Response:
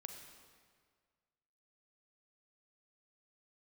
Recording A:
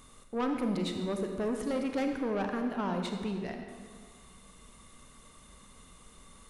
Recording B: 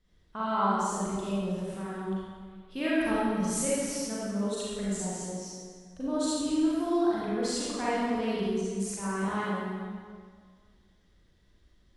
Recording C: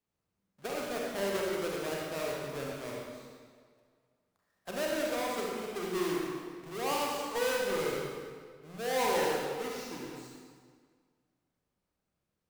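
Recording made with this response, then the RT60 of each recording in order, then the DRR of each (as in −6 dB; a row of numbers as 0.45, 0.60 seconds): A; 1.8, 1.8, 1.8 seconds; 4.0, −9.0, −3.0 decibels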